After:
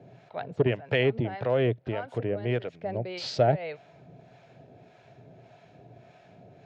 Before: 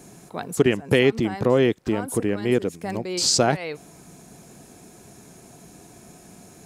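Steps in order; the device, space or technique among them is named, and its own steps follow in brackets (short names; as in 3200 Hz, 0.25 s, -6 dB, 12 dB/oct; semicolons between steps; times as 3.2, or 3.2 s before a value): guitar amplifier with harmonic tremolo (harmonic tremolo 1.7 Hz, depth 70%, crossover 720 Hz; soft clip -10.5 dBFS, distortion -20 dB; speaker cabinet 94–3500 Hz, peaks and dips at 120 Hz +9 dB, 210 Hz -9 dB, 320 Hz -7 dB, 620 Hz +9 dB, 1100 Hz -8 dB); gain -1.5 dB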